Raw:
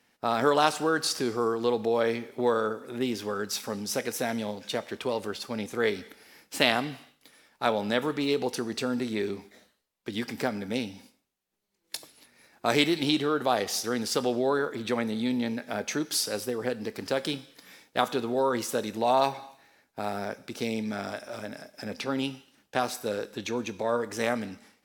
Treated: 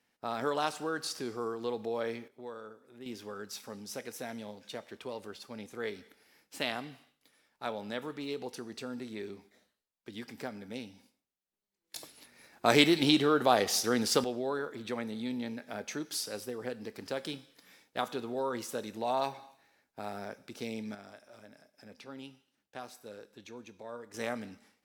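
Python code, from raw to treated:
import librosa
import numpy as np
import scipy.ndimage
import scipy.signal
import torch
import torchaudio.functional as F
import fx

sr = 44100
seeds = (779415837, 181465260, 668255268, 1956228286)

y = fx.gain(x, sr, db=fx.steps((0.0, -9.0), (2.28, -19.0), (3.06, -11.0), (11.96, 0.5), (14.24, -8.0), (20.95, -16.5), (24.14, -8.0)))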